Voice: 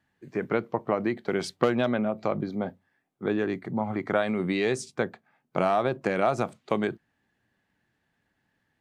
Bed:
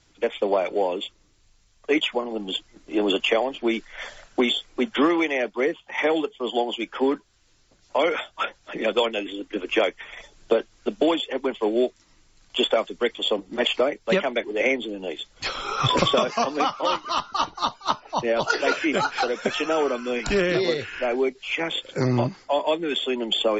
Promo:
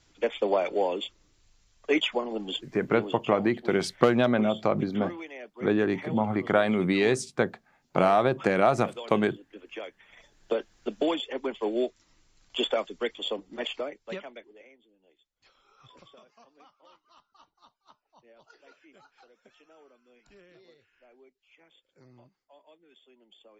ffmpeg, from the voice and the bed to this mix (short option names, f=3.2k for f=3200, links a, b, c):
-filter_complex "[0:a]adelay=2400,volume=2.5dB[a];[1:a]volume=9dB,afade=t=out:st=2.35:d=0.81:silence=0.177828,afade=t=in:st=10.02:d=0.66:silence=0.251189,afade=t=out:st=12.88:d=1.78:silence=0.0375837[b];[a][b]amix=inputs=2:normalize=0"